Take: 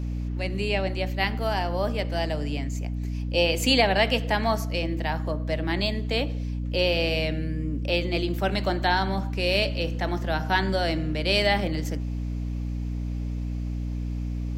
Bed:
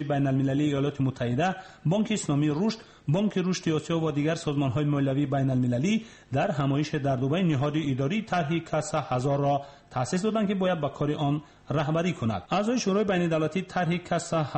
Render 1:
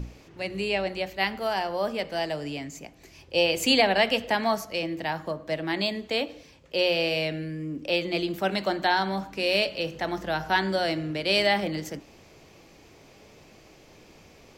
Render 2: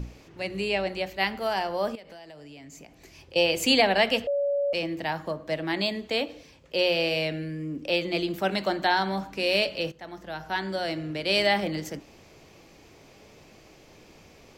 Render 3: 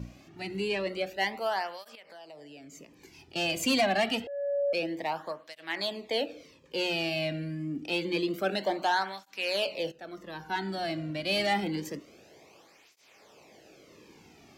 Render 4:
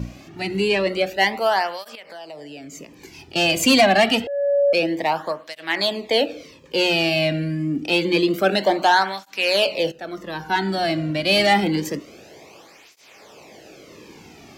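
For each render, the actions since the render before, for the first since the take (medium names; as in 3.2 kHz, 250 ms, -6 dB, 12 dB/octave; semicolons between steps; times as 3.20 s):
hum notches 60/120/180/240/300 Hz
1.95–3.36 s: compression 12:1, threshold -42 dBFS; 4.27–4.73 s: bleep 567 Hz -22.5 dBFS; 9.92–11.50 s: fade in, from -14.5 dB
saturation -16.5 dBFS, distortion -17 dB; cancelling through-zero flanger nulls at 0.27 Hz, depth 2.4 ms
trim +11 dB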